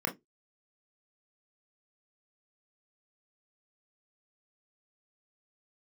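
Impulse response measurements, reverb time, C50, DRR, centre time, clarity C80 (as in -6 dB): 0.15 s, 16.5 dB, 1.0 dB, 14 ms, 28.0 dB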